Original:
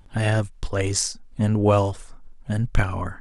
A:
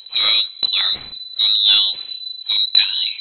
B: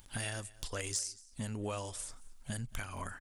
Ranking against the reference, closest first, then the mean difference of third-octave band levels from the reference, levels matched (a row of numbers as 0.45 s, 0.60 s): B, A; 7.5 dB, 17.0 dB